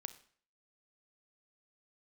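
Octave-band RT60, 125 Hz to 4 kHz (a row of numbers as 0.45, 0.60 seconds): 0.50, 0.50, 0.50, 0.50, 0.50, 0.45 seconds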